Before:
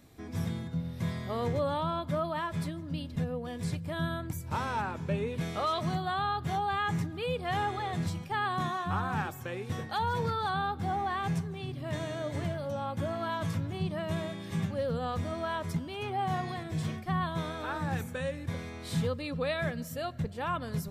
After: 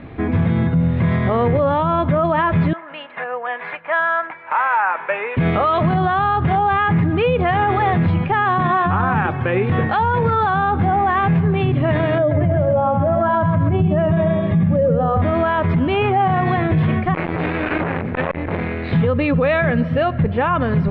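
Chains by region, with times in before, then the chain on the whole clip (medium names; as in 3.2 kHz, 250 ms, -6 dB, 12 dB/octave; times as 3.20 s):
2.73–5.37 s: Butterworth band-pass 1.2 kHz, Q 0.84 + tilt EQ +3 dB/octave
12.18–15.22 s: spectral contrast enhancement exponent 1.5 + bit-crushed delay 131 ms, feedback 35%, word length 10-bit, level -6 dB
17.14–18.93 s: comb filter that takes the minimum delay 0.47 ms + bass shelf 79 Hz -6.5 dB + transformer saturation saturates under 1.2 kHz
whole clip: inverse Chebyshev low-pass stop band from 6.4 kHz, stop band 50 dB; loudness maximiser +31 dB; trim -8.5 dB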